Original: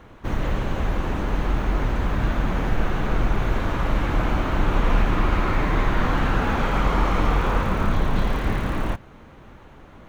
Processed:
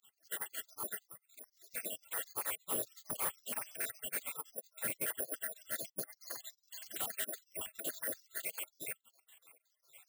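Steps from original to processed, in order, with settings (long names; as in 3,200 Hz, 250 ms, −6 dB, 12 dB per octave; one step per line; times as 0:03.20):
time-frequency cells dropped at random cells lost 72%
0:04.26–0:05.56: high-shelf EQ 2,900 Hz −9 dB
bad sample-rate conversion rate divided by 4×, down filtered, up zero stuff
gate on every frequency bin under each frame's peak −25 dB weak
soft clipping −26 dBFS, distortion −10 dB
0:01.04–0:01.69: drawn EQ curve 140 Hz 0 dB, 600 Hz −15 dB, 5,400 Hz −8 dB
level +1 dB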